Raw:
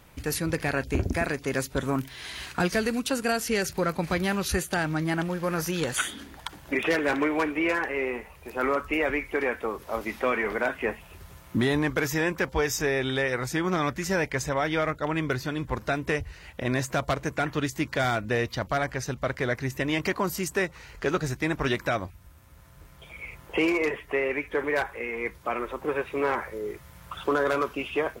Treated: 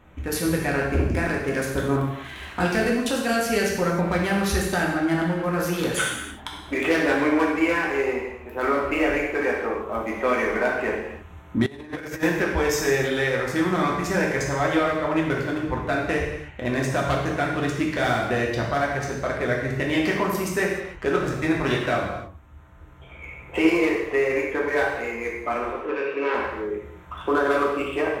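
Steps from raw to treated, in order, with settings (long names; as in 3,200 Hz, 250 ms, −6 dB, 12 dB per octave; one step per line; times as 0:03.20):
adaptive Wiener filter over 9 samples
0:25.73–0:26.35: loudspeaker in its box 310–5,800 Hz, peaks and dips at 760 Hz −8 dB, 1,200 Hz −4 dB, 2,700 Hz +7 dB
reverb whose tail is shaped and stops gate 340 ms falling, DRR −2.5 dB
0:11.66–0:12.23: compressor whose output falls as the input rises −31 dBFS, ratio −0.5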